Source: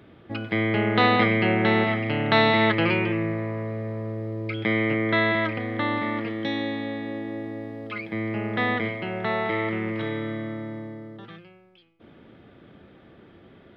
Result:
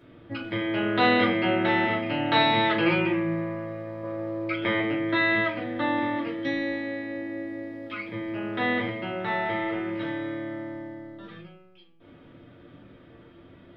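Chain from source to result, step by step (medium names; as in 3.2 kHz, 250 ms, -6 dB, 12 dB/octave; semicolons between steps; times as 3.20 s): 4.03–4.80 s: peaking EQ 1 kHz +7 dB 2.8 oct; simulated room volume 160 m³, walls furnished, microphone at 2.8 m; trim -7 dB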